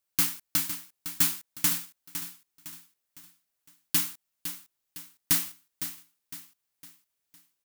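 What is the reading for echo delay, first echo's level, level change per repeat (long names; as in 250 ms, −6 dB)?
508 ms, −10.5 dB, −7.5 dB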